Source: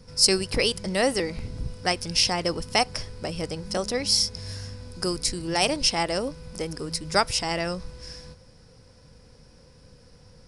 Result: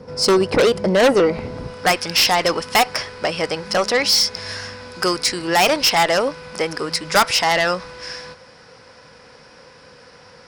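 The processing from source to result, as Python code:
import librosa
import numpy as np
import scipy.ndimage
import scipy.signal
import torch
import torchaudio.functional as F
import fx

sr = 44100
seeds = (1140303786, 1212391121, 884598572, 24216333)

y = fx.filter_sweep_bandpass(x, sr, from_hz=570.0, to_hz=1500.0, start_s=1.21, end_s=1.98, q=0.79)
y = fx.cheby_harmonics(y, sr, harmonics=(5,), levels_db=(-8,), full_scale_db=-16.5)
y = y * librosa.db_to_amplitude(8.5)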